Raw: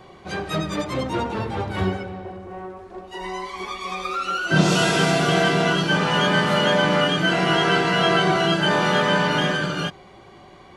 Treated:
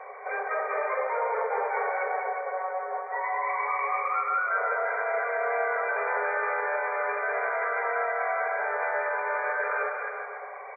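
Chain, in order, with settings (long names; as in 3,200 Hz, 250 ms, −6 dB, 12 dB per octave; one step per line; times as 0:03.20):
brick-wall band-pass 400–2,400 Hz
reversed playback
downward compressor 5 to 1, threshold −31 dBFS, peak gain reduction 13 dB
reversed playback
brickwall limiter −28.5 dBFS, peak gain reduction 8 dB
bouncing-ball delay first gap 200 ms, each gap 0.8×, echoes 5
level +6.5 dB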